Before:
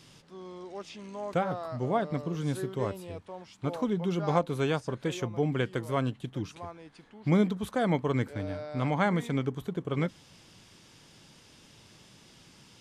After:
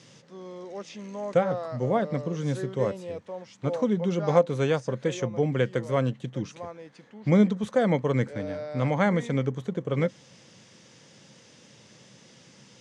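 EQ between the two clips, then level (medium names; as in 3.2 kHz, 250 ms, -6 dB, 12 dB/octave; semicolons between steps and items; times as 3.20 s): cabinet simulation 120–8700 Hz, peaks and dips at 130 Hz +7 dB, 210 Hz +6 dB, 520 Hz +10 dB, 1.9 kHz +5 dB, 6.2 kHz +6 dB; 0.0 dB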